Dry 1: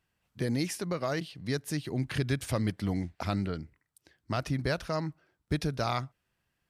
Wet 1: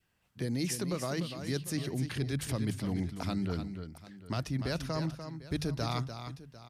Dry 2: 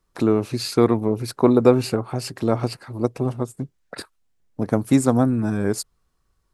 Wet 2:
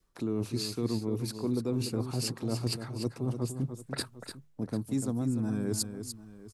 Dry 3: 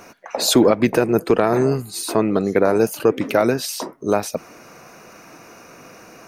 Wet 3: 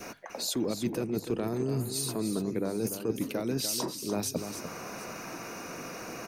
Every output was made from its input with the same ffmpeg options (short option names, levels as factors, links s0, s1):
-filter_complex "[0:a]acrossover=split=380|3000[s0][s1][s2];[s1]acompressor=threshold=0.00562:ratio=2[s3];[s0][s3][s2]amix=inputs=3:normalize=0,adynamicequalizer=threshold=0.00631:dfrequency=1000:dqfactor=2:tfrequency=1000:tqfactor=2:attack=5:release=100:ratio=0.375:range=2:mode=boostabove:tftype=bell,bandreject=f=50:t=h:w=6,bandreject=f=100:t=h:w=6,bandreject=f=150:t=h:w=6,areverse,acompressor=threshold=0.0251:ratio=6,areverse,aecho=1:1:295|748:0.355|0.133,volume=1.41"